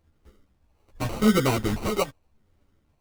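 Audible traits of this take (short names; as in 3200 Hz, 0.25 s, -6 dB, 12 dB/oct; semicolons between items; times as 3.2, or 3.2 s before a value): phasing stages 2, 0.86 Hz, lowest notch 240–1400 Hz; aliases and images of a low sample rate 1700 Hz, jitter 0%; a shimmering, thickened sound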